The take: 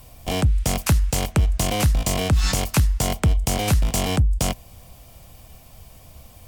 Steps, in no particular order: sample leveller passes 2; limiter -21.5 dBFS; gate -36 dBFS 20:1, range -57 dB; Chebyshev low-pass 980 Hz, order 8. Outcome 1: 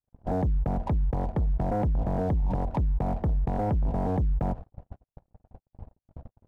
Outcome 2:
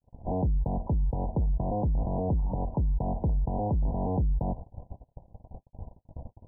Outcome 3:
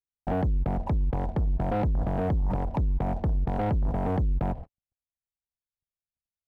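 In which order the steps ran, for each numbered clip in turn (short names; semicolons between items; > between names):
Chebyshev low-pass > sample leveller > limiter > gate; sample leveller > limiter > gate > Chebyshev low-pass; gate > Chebyshev low-pass > limiter > sample leveller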